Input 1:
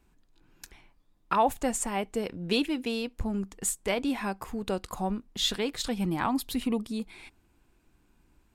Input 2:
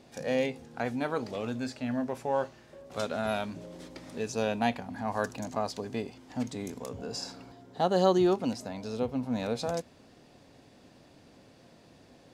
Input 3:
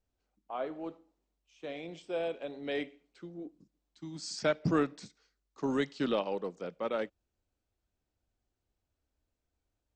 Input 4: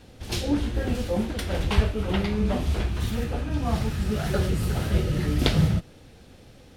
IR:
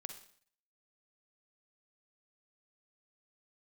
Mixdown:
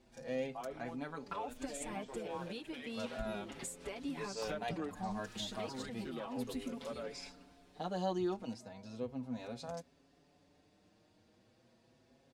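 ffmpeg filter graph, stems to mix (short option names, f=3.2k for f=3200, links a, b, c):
-filter_complex "[0:a]alimiter=limit=-21dB:level=0:latency=1:release=309,volume=-3dB,asplit=2[a][b];[1:a]volume=-9dB[c];[2:a]adelay=50,volume=-0.5dB[d];[3:a]highpass=660,adelay=1350,volume=-10.5dB[e];[b]apad=whole_len=357716[f];[e][f]sidechaincompress=threshold=-39dB:ratio=8:attack=16:release=407[g];[a][d][g]amix=inputs=3:normalize=0,acompressor=threshold=-37dB:ratio=5,volume=0dB[h];[c][h]amix=inputs=2:normalize=0,equalizer=f=13k:w=2.9:g=-7.5,asplit=2[i][j];[j]adelay=5.8,afreqshift=0.34[k];[i][k]amix=inputs=2:normalize=1"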